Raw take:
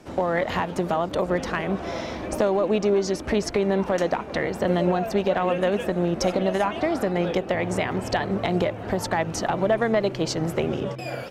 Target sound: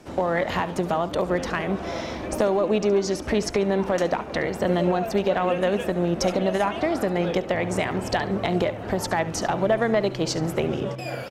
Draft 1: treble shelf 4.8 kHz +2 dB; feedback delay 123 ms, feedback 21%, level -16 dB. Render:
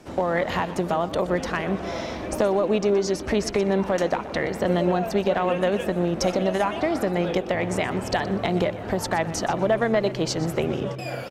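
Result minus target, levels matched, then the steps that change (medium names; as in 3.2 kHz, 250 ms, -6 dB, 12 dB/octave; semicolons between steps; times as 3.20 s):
echo 53 ms late
change: feedback delay 70 ms, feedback 21%, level -16 dB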